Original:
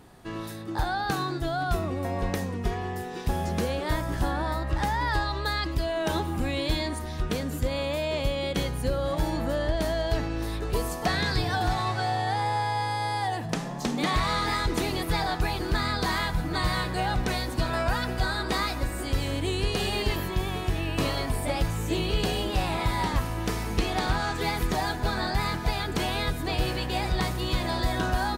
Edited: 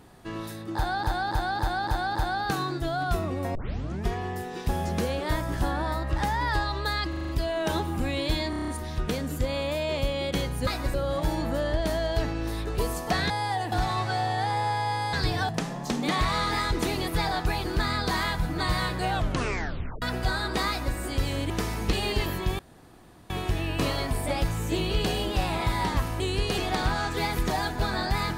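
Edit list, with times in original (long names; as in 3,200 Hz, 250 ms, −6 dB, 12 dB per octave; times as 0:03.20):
0:00.75–0:01.03: repeat, 6 plays
0:02.15: tape start 0.51 s
0:05.69: stutter 0.04 s, 6 plays
0:06.90: stutter 0.03 s, 7 plays
0:11.25–0:11.61: swap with 0:13.02–0:13.44
0:17.05: tape stop 0.92 s
0:18.64–0:18.91: duplicate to 0:08.89
0:19.45–0:19.83: swap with 0:23.39–0:23.82
0:20.49: splice in room tone 0.71 s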